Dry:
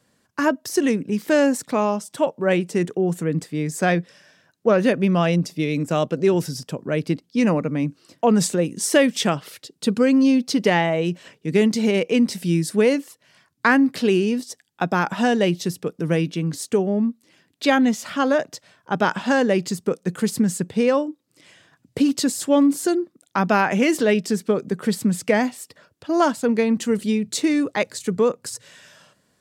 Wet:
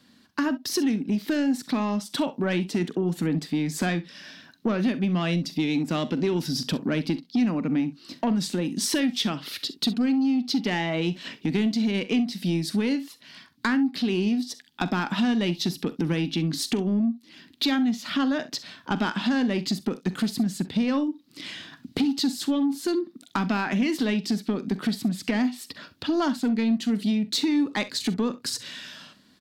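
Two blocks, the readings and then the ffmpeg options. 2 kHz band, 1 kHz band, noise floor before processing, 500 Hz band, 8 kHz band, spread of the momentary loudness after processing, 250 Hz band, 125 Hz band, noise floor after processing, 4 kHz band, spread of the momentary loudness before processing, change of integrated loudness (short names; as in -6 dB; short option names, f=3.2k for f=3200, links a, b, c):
-6.5 dB, -8.5 dB, -68 dBFS, -11.0 dB, -6.0 dB, 8 LU, -3.0 dB, -4.0 dB, -58 dBFS, +1.0 dB, 9 LU, -5.0 dB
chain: -af "dynaudnorm=f=110:g=21:m=11.5dB,equalizer=f=125:t=o:w=1:g=-6,equalizer=f=250:t=o:w=1:g=11,equalizer=f=500:t=o:w=1:g=-9,equalizer=f=4k:t=o:w=1:g=10,equalizer=f=8k:t=o:w=1:g=-8,acompressor=threshold=-27dB:ratio=4,asoftclip=type=tanh:threshold=-19.5dB,aecho=1:1:44|65:0.15|0.133,volume=3.5dB"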